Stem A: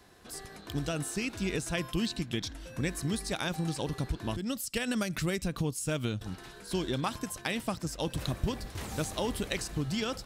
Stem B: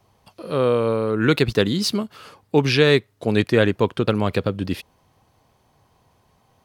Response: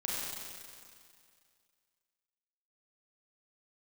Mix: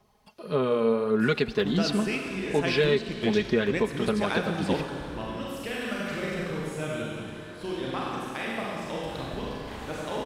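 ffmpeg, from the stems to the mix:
-filter_complex "[0:a]bass=f=250:g=-9,treble=f=4k:g=-14,dynaudnorm=f=260:g=5:m=9.5dB,adelay=900,volume=-5.5dB,asplit=2[a][b];[b]volume=-4.5dB[c];[1:a]acrossover=split=6000[d][e];[e]acompressor=threshold=-57dB:ratio=4:attack=1:release=60[f];[d][f]amix=inputs=2:normalize=0,aecho=1:1:4.8:0.67,aphaser=in_gain=1:out_gain=1:delay=4.4:decay=0.33:speed=1.7:type=sinusoidal,volume=-7dB,asplit=3[g][h][i];[h]volume=-20dB[j];[i]apad=whole_len=491834[k];[a][k]sidechaingate=range=-33dB:threshold=-40dB:ratio=16:detection=peak[l];[2:a]atrim=start_sample=2205[m];[c][j]amix=inputs=2:normalize=0[n];[n][m]afir=irnorm=-1:irlink=0[o];[l][g][o]amix=inputs=3:normalize=0,alimiter=limit=-13dB:level=0:latency=1:release=378"

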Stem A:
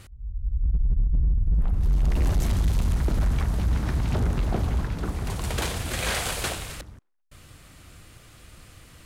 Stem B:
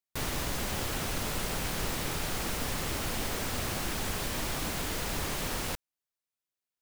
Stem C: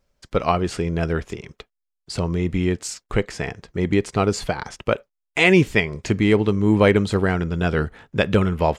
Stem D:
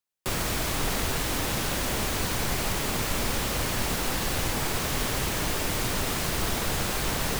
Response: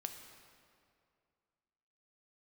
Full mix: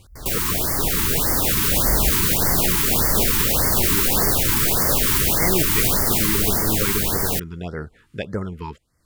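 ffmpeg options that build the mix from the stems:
-filter_complex "[0:a]volume=-2dB[a];[1:a]flanger=delay=8.4:depth=2.9:regen=67:speed=0.85:shape=triangular,volume=-1dB[b];[2:a]volume=-9dB,asplit=2[c][d];[3:a]firequalizer=gain_entry='entry(420,0);entry(5400,1);entry(15000,11)':delay=0.05:min_phase=1,dynaudnorm=f=280:g=13:m=12.5dB,alimiter=limit=-11dB:level=0:latency=1:release=90,volume=2.5dB[e];[d]apad=whole_len=399173[f];[a][f]sidechaincompress=threshold=-46dB:ratio=10:attack=16:release=535[g];[g][b][c][e]amix=inputs=4:normalize=0,afftfilt=real='re*(1-between(b*sr/1024,580*pow(3200/580,0.5+0.5*sin(2*PI*1.7*pts/sr))/1.41,580*pow(3200/580,0.5+0.5*sin(2*PI*1.7*pts/sr))*1.41))':imag='im*(1-between(b*sr/1024,580*pow(3200/580,0.5+0.5*sin(2*PI*1.7*pts/sr))/1.41,580*pow(3200/580,0.5+0.5*sin(2*PI*1.7*pts/sr))*1.41))':win_size=1024:overlap=0.75"

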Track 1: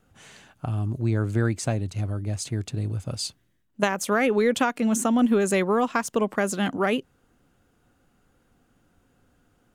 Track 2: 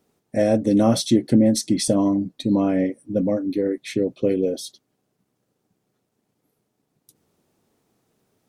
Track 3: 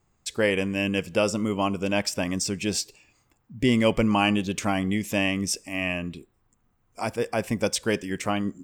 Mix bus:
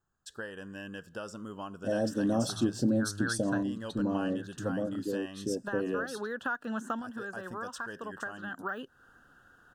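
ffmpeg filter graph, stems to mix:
-filter_complex "[0:a]deesser=1,equalizer=f=1.7k:t=o:w=2.6:g=7.5,adelay=1850,volume=-3.5dB[a];[1:a]adelay=1500,volume=-11.5dB[b];[2:a]volume=-15dB,asplit=2[c][d];[d]apad=whole_len=511397[e];[a][e]sidechaincompress=threshold=-50dB:ratio=8:attack=7.6:release=563[f];[f][c]amix=inputs=2:normalize=0,equalizer=f=1.6k:t=o:w=0.69:g=14.5,acompressor=threshold=-37dB:ratio=2.5,volume=0dB[g];[b][g]amix=inputs=2:normalize=0,asuperstop=centerf=2200:order=4:qfactor=1.8"

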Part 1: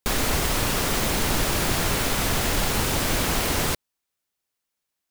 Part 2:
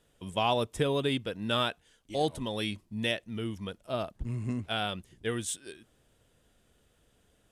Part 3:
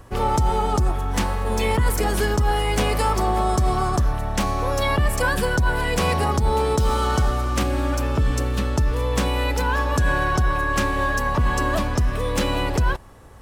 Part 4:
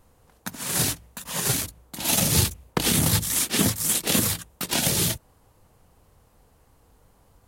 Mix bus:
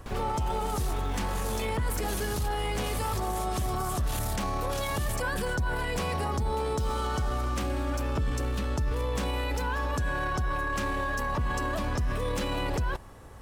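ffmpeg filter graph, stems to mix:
-filter_complex "[0:a]aemphasis=mode=reproduction:type=75kf,volume=-14dB[a];[1:a]acrusher=bits=5:mix=0:aa=0.5,volume=-11.5dB[b];[2:a]volume=-2dB[c];[3:a]asubboost=boost=11.5:cutoff=72,volume=-10.5dB[d];[a][b][c][d]amix=inputs=4:normalize=0,alimiter=limit=-22.5dB:level=0:latency=1:release=13"

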